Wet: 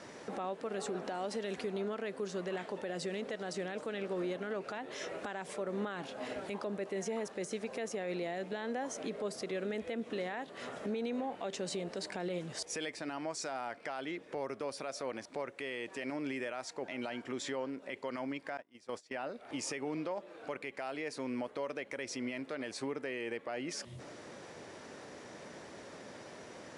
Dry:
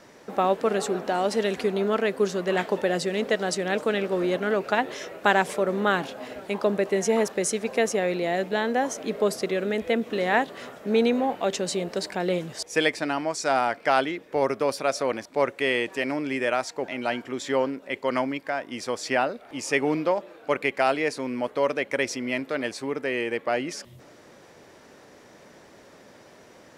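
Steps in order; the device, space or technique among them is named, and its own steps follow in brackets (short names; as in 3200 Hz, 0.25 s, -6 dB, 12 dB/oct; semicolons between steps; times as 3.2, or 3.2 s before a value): 18.57–19.28 gate -29 dBFS, range -27 dB; podcast mastering chain (HPF 62 Hz; de-esser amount 60%; compressor 2.5:1, threshold -39 dBFS, peak gain reduction 16 dB; limiter -29.5 dBFS, peak gain reduction 10 dB; gain +1.5 dB; MP3 96 kbps 24000 Hz)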